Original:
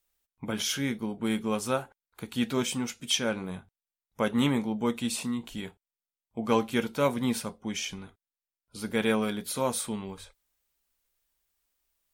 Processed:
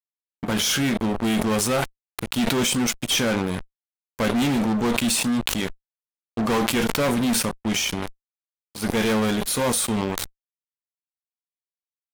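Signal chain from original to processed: fuzz box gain 32 dB, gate -41 dBFS; sustainer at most 23 dB/s; gain -5.5 dB

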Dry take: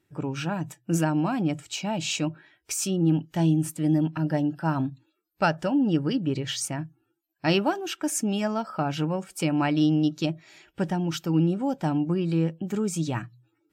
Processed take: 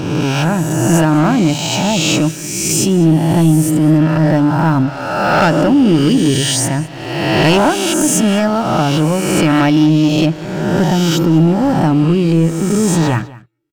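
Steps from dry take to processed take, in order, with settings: spectral swells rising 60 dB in 1.50 s; sample leveller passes 3; low shelf 340 Hz +4.5 dB; echo 0.2 s -20 dB; gain -1.5 dB

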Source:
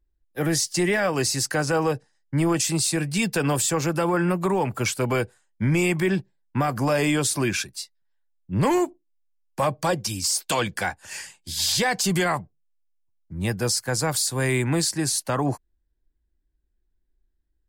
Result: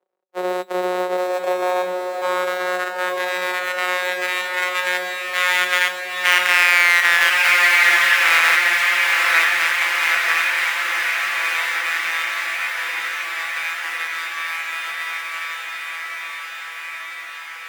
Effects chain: sample sorter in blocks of 256 samples; Doppler pass-by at 7.07, 17 m/s, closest 13 m; high-pass sweep 460 Hz -> 2000 Hz, 1.08–3.37; three-band isolator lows -13 dB, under 310 Hz, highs -12 dB, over 2300 Hz; resonator 190 Hz, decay 0.17 s, harmonics all, mix 70%; on a send: diffused feedback echo 0.915 s, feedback 76%, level -3.5 dB; on the sum: maximiser +28.5 dB; gain -1 dB

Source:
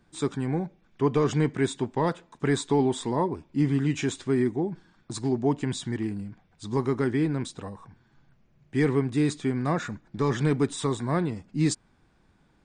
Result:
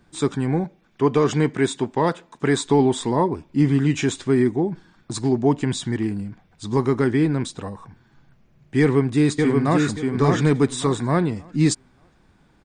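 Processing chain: 0.64–2.66 low shelf 91 Hz -11 dB; 8.8–9.82 echo throw 0.58 s, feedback 25%, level -3 dB; gain +6 dB

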